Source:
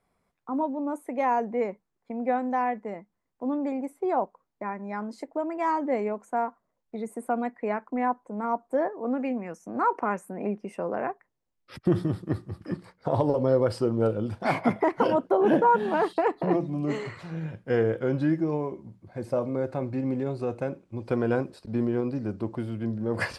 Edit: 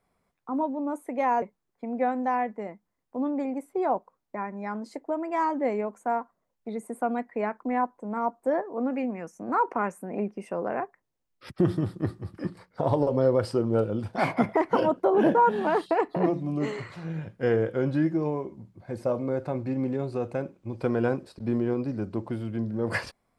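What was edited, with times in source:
1.42–1.69 s: delete

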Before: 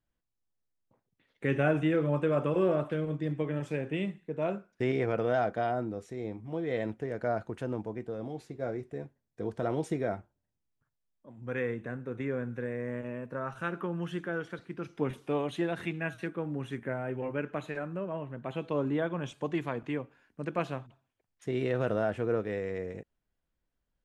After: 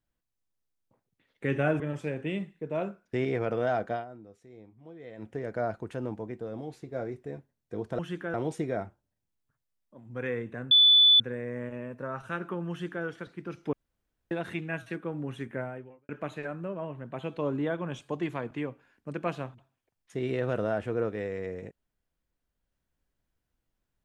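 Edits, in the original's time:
1.80–3.47 s: delete
5.59–6.97 s: dip -13.5 dB, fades 0.13 s
12.03–12.52 s: bleep 3.48 kHz -15 dBFS
14.02–14.37 s: copy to 9.66 s
15.05–15.63 s: room tone
16.95–17.41 s: fade out quadratic

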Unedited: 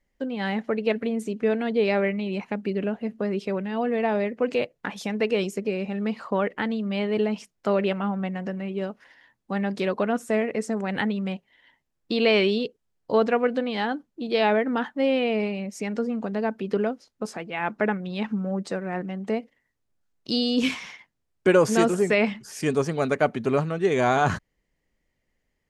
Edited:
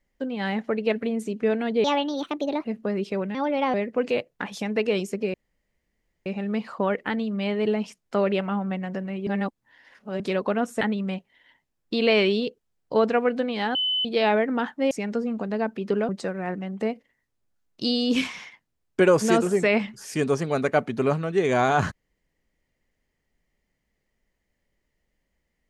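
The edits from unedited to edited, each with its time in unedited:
1.84–3.00 s: speed 144%
3.70–4.18 s: speed 122%
5.78 s: insert room tone 0.92 s
8.79–9.72 s: reverse
10.33–10.99 s: delete
13.93–14.23 s: bleep 3.02 kHz -21.5 dBFS
15.09–15.74 s: delete
16.92–18.56 s: delete

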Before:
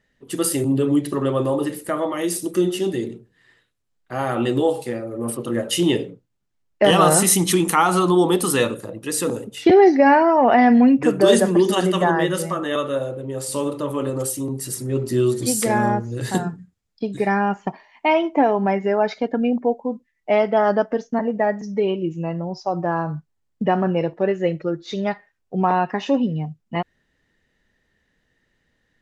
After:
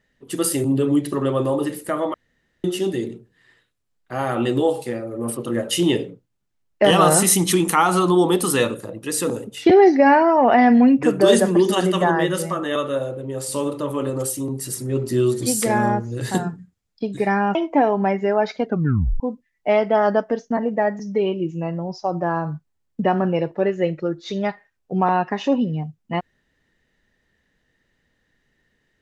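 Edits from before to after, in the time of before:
2.14–2.64 s: room tone
17.55–18.17 s: delete
19.28 s: tape stop 0.54 s

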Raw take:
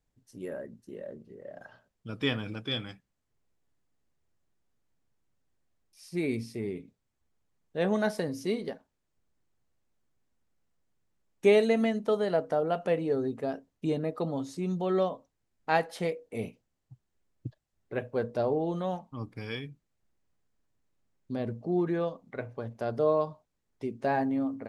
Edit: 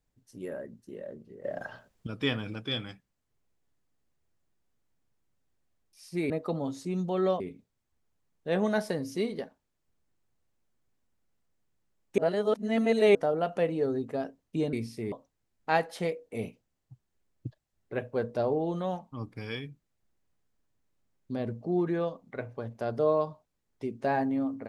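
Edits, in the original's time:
1.44–2.07 s: gain +9.5 dB
6.30–6.69 s: swap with 14.02–15.12 s
11.47–12.44 s: reverse

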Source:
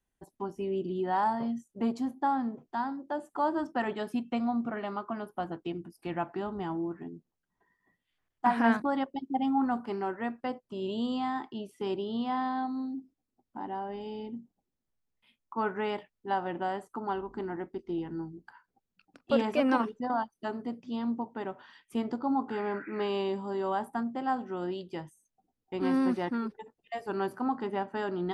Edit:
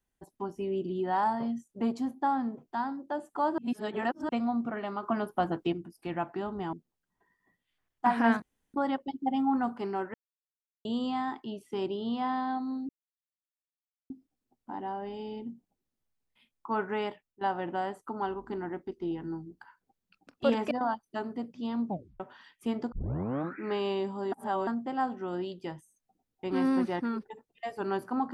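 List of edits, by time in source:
3.58–4.29 s: reverse
5.03–5.73 s: gain +6 dB
6.73–7.13 s: delete
8.82 s: insert room tone 0.32 s
10.22–10.93 s: mute
12.97 s: insert silence 1.21 s
15.92–16.28 s: fade out, to -14 dB
19.58–20.00 s: delete
21.16 s: tape stop 0.33 s
22.21 s: tape start 0.65 s
23.61–23.96 s: reverse

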